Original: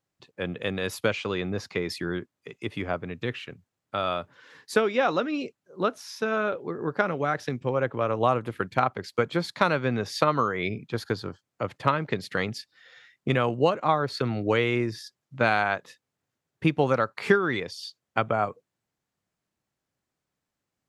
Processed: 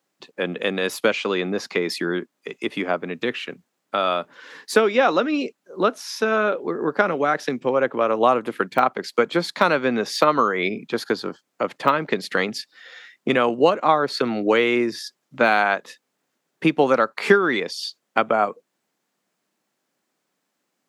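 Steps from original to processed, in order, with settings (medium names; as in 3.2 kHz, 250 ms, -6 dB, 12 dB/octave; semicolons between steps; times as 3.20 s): de-esser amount 70%; high-pass 200 Hz 24 dB/octave; in parallel at -3 dB: compression, threshold -36 dBFS, peak gain reduction 19 dB; on the sum: trim +5 dB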